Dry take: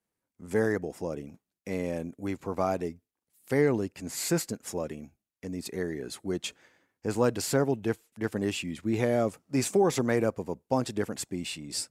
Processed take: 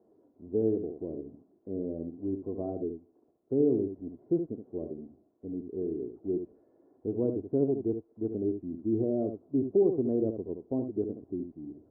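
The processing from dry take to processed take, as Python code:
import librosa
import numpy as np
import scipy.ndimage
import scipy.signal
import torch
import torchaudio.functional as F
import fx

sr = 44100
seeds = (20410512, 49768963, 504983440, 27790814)

y = x + 0.5 * 10.0 ** (-24.5 / 20.0) * np.diff(np.sign(x), prepend=np.sign(x[:1]))
y = scipy.signal.sosfilt(scipy.signal.cheby2(4, 80, 2800.0, 'lowpass', fs=sr, output='sos'), y)
y = fx.low_shelf(y, sr, hz=130.0, db=-7.5)
y = y + 0.44 * np.pad(y, (int(2.9 * sr / 1000.0), 0))[:len(y)]
y = y + 10.0 ** (-7.5 / 20.0) * np.pad(y, (int(72 * sr / 1000.0), 0))[:len(y)]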